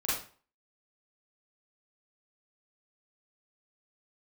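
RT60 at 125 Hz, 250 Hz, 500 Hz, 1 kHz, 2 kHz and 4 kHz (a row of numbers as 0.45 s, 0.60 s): 0.45 s, 0.40 s, 0.40 s, 0.40 s, 0.40 s, 0.35 s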